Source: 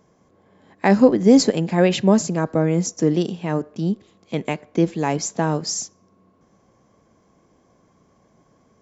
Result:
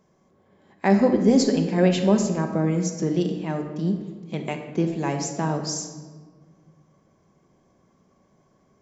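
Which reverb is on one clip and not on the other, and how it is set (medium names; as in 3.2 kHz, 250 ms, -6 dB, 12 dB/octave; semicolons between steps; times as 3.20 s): simulated room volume 1400 m³, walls mixed, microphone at 1.1 m; trim -5.5 dB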